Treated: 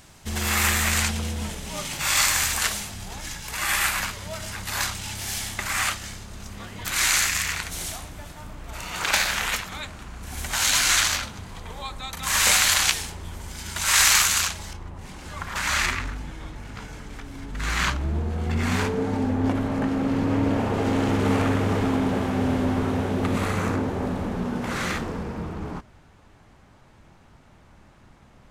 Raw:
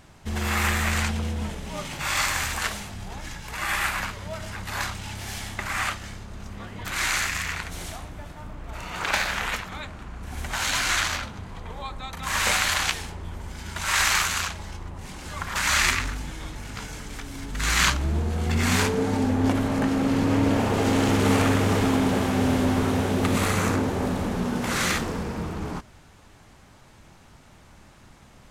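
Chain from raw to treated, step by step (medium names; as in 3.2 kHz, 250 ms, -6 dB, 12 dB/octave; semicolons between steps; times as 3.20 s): treble shelf 3.4 kHz +11 dB, from 14.73 s -3 dB, from 15.86 s -9 dB; trim -1 dB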